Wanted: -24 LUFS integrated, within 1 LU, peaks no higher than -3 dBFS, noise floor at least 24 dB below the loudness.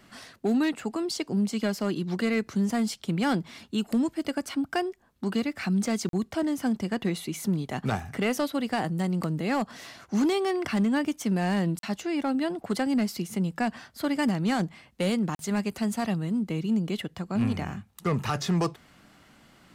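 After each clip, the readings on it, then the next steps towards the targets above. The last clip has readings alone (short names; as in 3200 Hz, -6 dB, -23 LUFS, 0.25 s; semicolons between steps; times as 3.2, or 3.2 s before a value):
clipped 0.7%; flat tops at -19.0 dBFS; dropouts 3; longest dropout 42 ms; loudness -28.5 LUFS; peak -19.0 dBFS; loudness target -24.0 LUFS
-> clip repair -19 dBFS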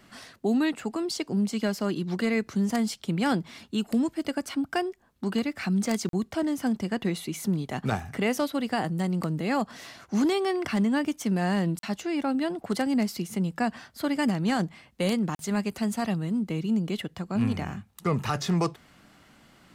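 clipped 0.0%; dropouts 3; longest dropout 42 ms
-> interpolate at 6.09/11.79/15.35, 42 ms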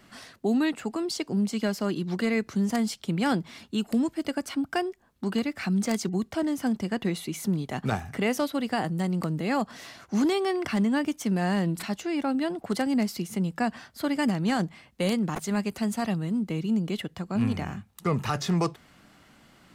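dropouts 0; loudness -28.5 LUFS; peak -10.0 dBFS; loudness target -24.0 LUFS
-> gain +4.5 dB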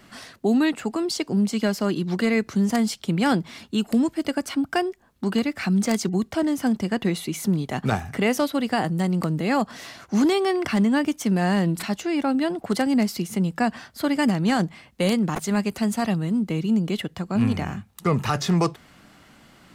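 loudness -24.0 LUFS; peak -5.5 dBFS; noise floor -54 dBFS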